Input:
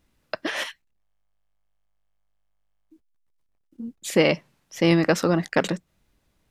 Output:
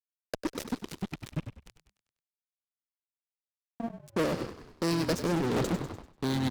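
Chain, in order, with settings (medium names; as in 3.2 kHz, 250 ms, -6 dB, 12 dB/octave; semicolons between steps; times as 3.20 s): high-order bell 1.6 kHz -14.5 dB 2.5 oct; power-law waveshaper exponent 2; on a send at -21.5 dB: bass shelf 310 Hz -12 dB + reverberation RT60 2.8 s, pre-delay 3 ms; on the sum: rotary cabinet horn 0.75 Hz; reverse; compression 16:1, threshold -36 dBFS, peak gain reduction 17 dB; reverse; ever faster or slower copies 154 ms, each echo -4 st, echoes 3; fuzz box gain 51 dB, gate -58 dBFS; frequency-shifting echo 98 ms, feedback 46%, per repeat -42 Hz, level -10 dB; random flutter of the level, depth 55%; trim -9 dB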